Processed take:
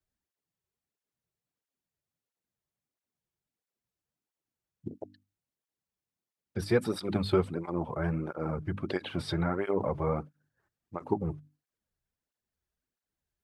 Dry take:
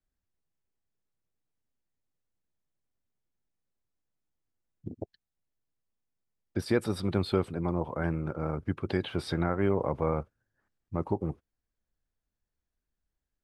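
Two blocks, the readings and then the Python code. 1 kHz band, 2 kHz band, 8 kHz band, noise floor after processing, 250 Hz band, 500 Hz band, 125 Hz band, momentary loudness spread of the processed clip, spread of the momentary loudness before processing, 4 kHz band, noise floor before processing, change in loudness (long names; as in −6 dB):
−0.5 dB, −0.5 dB, 0.0 dB, below −85 dBFS, −1.5 dB, 0.0 dB, −1.5 dB, 17 LU, 16 LU, +0.5 dB, below −85 dBFS, −0.5 dB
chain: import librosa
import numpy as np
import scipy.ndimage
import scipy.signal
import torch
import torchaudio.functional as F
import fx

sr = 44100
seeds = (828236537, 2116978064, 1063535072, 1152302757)

p1 = fx.hum_notches(x, sr, base_hz=50, count=6)
p2 = fx.level_steps(p1, sr, step_db=13)
p3 = p1 + (p2 * librosa.db_to_amplitude(-2.5))
y = fx.flanger_cancel(p3, sr, hz=1.5, depth_ms=4.4)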